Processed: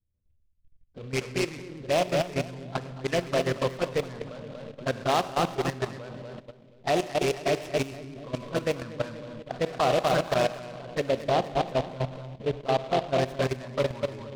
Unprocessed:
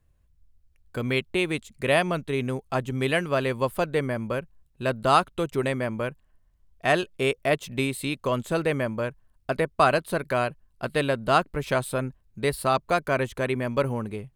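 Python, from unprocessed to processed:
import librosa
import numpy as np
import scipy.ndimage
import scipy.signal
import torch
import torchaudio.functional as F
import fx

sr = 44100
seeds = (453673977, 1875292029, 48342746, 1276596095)

y = fx.env_flanger(x, sr, rest_ms=10.4, full_db=-19.0)
y = fx.lowpass(y, sr, hz=1100.0, slope=24, at=(11.0, 13.17))
y = fx.echo_feedback(y, sr, ms=239, feedback_pct=50, wet_db=-5)
y = fx.rev_schroeder(y, sr, rt60_s=1.4, comb_ms=31, drr_db=7.0)
y = fx.level_steps(y, sr, step_db=13)
y = fx.dynamic_eq(y, sr, hz=680.0, q=0.73, threshold_db=-32.0, ratio=4.0, max_db=5)
y = fx.env_lowpass(y, sr, base_hz=410.0, full_db=-22.5)
y = fx.noise_mod_delay(y, sr, seeds[0], noise_hz=2400.0, depth_ms=0.05)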